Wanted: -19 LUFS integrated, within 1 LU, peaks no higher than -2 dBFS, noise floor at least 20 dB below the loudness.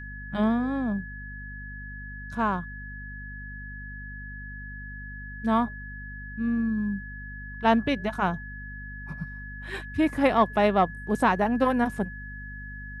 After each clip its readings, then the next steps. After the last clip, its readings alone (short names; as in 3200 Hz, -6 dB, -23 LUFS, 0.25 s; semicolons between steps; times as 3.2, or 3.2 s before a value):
hum 50 Hz; harmonics up to 250 Hz; hum level -38 dBFS; steady tone 1700 Hz; tone level -40 dBFS; loudness -26.5 LUFS; peak -8.5 dBFS; loudness target -19.0 LUFS
-> notches 50/100/150/200/250 Hz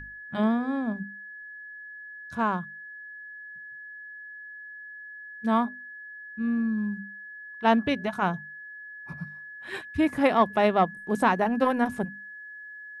hum none; steady tone 1700 Hz; tone level -40 dBFS
-> notch 1700 Hz, Q 30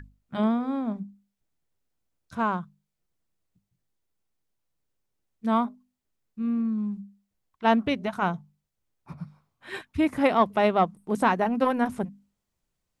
steady tone none; loudness -26.5 LUFS; peak -8.5 dBFS; loudness target -19.0 LUFS
-> gain +7.5 dB; limiter -2 dBFS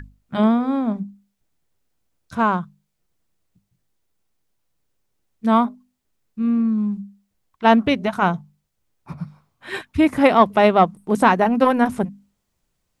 loudness -19.0 LUFS; peak -2.0 dBFS; noise floor -74 dBFS